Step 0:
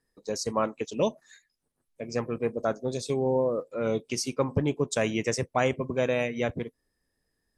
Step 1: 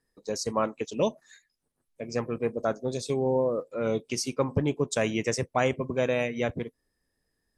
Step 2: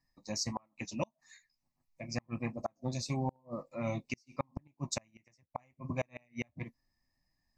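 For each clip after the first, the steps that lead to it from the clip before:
no processing that can be heard
phaser with its sweep stopped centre 2,200 Hz, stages 8; flanger 1.5 Hz, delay 6 ms, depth 3.2 ms, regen −52%; gate with flip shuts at −26 dBFS, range −37 dB; level +4 dB

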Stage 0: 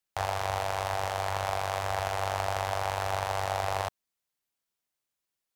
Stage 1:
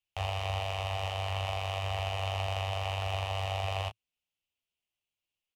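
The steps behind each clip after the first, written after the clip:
drawn EQ curve 110 Hz 0 dB, 170 Hz −6 dB, 820 Hz −7 dB, 1,700 Hz −13 dB, 2,800 Hz +6 dB, 4,000 Hz −7 dB, 15,000 Hz −14 dB
on a send: ambience of single reflections 12 ms −5.5 dB, 30 ms −10 dB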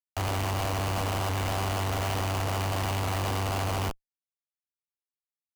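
comparator with hysteresis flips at −40.5 dBFS
level +6.5 dB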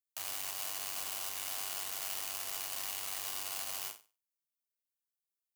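first difference
flutter between parallel walls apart 8.4 metres, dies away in 0.32 s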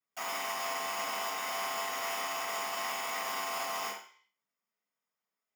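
convolution reverb RT60 0.50 s, pre-delay 3 ms, DRR −17 dB
level −5 dB

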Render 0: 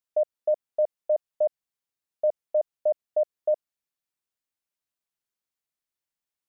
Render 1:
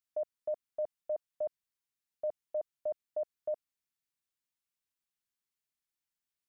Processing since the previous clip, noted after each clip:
parametric band 590 Hz −9.5 dB 1.1 octaves
level −2 dB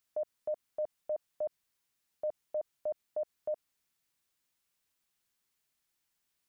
brickwall limiter −38.5 dBFS, peak gain reduction 10.5 dB
level +9.5 dB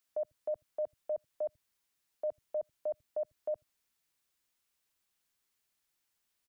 multiband delay without the direct sound highs, lows 80 ms, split 170 Hz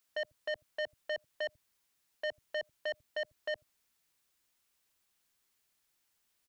saturating transformer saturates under 1,600 Hz
level +3.5 dB

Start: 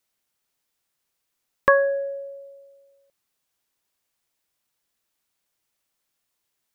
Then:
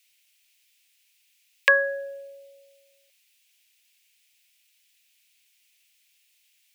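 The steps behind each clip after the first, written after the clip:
inverse Chebyshev high-pass filter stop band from 280 Hz, stop band 40 dB
high shelf with overshoot 1,700 Hz +13 dB, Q 3
level −2 dB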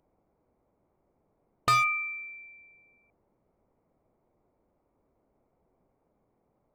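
harmonic generator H 4 −22 dB, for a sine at −1 dBFS
voice inversion scrambler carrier 2,900 Hz
gain into a clipping stage and back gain 21 dB
level +1 dB

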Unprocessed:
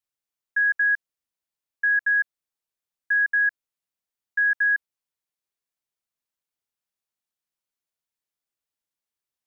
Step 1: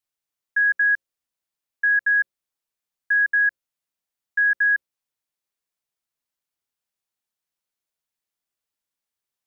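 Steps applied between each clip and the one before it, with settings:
mains-hum notches 60/120/180/240/300/360/420/480/540 Hz
level +2 dB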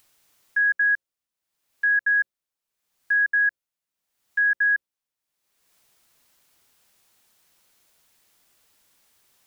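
upward compression, threshold −42 dBFS
level −1.5 dB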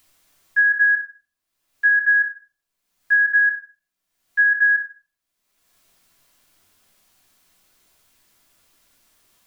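rectangular room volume 370 cubic metres, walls furnished, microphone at 3.1 metres
level −1.5 dB

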